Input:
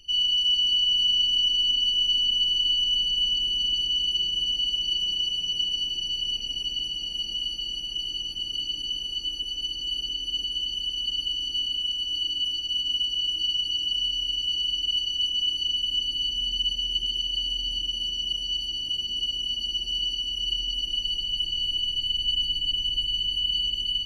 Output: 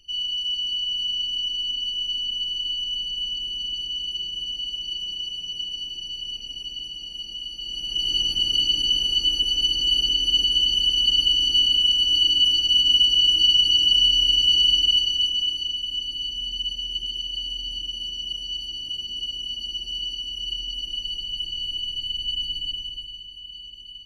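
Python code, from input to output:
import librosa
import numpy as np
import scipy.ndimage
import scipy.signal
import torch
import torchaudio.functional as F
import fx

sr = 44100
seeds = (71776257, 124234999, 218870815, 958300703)

y = fx.gain(x, sr, db=fx.line((7.52, -4.0), (8.16, 9.0), (14.72, 9.0), (15.77, -2.0), (22.64, -2.0), (23.29, -14.0)))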